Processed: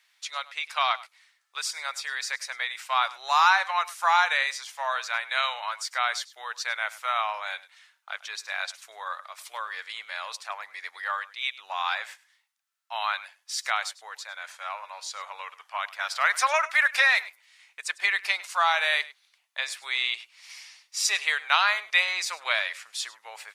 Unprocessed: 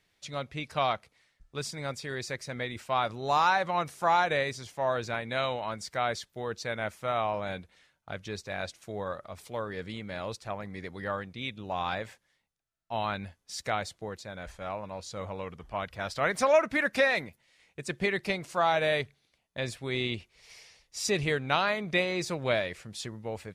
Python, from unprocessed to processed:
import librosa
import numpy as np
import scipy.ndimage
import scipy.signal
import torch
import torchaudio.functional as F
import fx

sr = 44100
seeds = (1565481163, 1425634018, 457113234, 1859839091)

p1 = scipy.signal.sosfilt(scipy.signal.butter(4, 980.0, 'highpass', fs=sr, output='sos'), x)
p2 = p1 + fx.echo_single(p1, sr, ms=101, db=-19.0, dry=0)
y = p2 * librosa.db_to_amplitude(7.5)